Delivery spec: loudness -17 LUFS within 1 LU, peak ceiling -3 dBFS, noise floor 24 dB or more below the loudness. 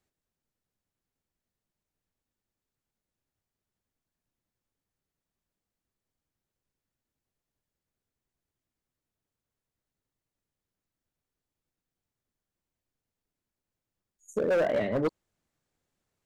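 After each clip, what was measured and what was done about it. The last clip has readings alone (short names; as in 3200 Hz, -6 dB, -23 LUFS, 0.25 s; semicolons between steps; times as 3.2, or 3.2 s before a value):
clipped 0.5%; flat tops at -22.0 dBFS; loudness -28.5 LUFS; peak -22.0 dBFS; loudness target -17.0 LUFS
-> clip repair -22 dBFS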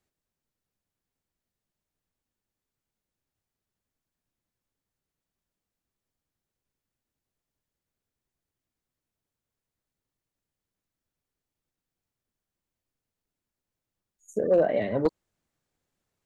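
clipped 0.0%; loudness -25.5 LUFS; peak -13.0 dBFS; loudness target -17.0 LUFS
-> gain +8.5 dB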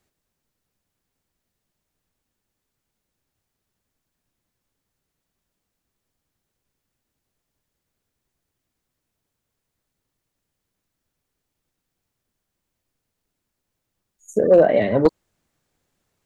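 loudness -17.0 LUFS; peak -4.5 dBFS; noise floor -81 dBFS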